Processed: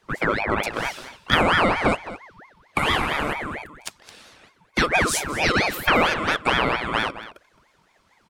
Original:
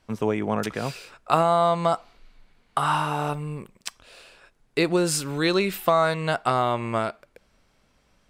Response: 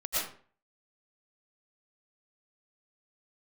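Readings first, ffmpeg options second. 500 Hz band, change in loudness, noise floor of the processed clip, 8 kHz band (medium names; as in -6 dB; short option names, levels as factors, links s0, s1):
-2.0 dB, +2.5 dB, -62 dBFS, +2.0 dB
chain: -filter_complex "[0:a]afftfilt=real='real(if(lt(b,1008),b+24*(1-2*mod(floor(b/24),2)),b),0)':imag='imag(if(lt(b,1008),b+24*(1-2*mod(floor(b/24),2)),b),0)':win_size=2048:overlap=0.75,asplit=2[s0][s1];[s1]adelay=215.7,volume=0.2,highshelf=f=4000:g=-4.85[s2];[s0][s2]amix=inputs=2:normalize=0,aeval=exprs='val(0)*sin(2*PI*990*n/s+990*0.65/4.4*sin(2*PI*4.4*n/s))':c=same,volume=1.68"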